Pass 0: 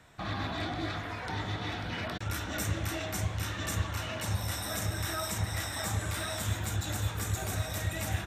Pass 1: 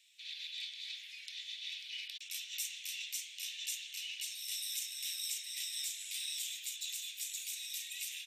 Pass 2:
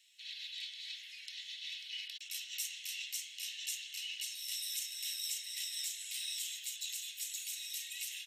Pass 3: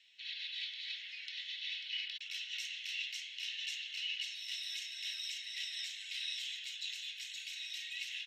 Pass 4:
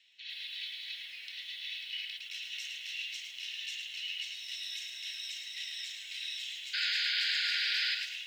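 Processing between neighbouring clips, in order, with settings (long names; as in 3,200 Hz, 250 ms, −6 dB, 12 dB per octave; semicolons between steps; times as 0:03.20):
Butterworth high-pass 2,500 Hz 48 dB per octave; high-shelf EQ 5,500 Hz −4.5 dB; level +2 dB
notch comb filter 1,200 Hz; level +1.5 dB
high-frequency loss of the air 230 metres; level +8 dB
sound drawn into the spectrogram noise, 0:06.73–0:07.95, 1,400–5,100 Hz −33 dBFS; feedback echo at a low word length 108 ms, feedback 35%, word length 10 bits, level −5.5 dB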